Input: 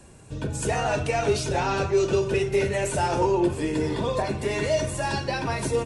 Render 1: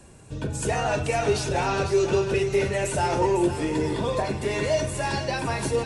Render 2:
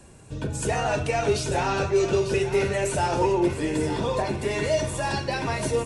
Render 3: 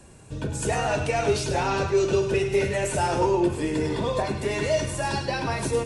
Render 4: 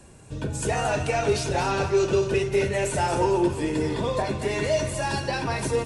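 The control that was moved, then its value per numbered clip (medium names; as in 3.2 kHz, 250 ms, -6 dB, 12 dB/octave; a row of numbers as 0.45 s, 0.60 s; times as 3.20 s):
thinning echo, time: 501 ms, 897 ms, 103 ms, 226 ms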